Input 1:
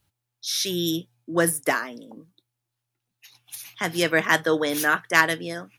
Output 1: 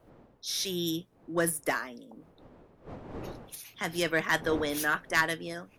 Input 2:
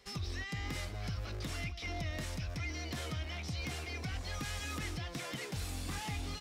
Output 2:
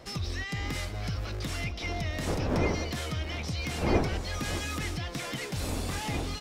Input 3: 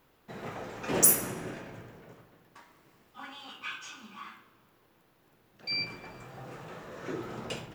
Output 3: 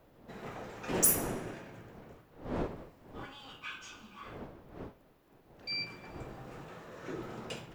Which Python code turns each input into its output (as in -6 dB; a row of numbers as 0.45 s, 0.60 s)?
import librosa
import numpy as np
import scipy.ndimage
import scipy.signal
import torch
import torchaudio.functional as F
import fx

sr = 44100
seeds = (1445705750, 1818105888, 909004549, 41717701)

y = fx.diode_clip(x, sr, knee_db=-6.5)
y = fx.dmg_wind(y, sr, seeds[0], corner_hz=500.0, level_db=-42.0)
y = y * 10.0 ** (-12 / 20.0) / np.max(np.abs(y))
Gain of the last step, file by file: -6.0 dB, +6.0 dB, -4.0 dB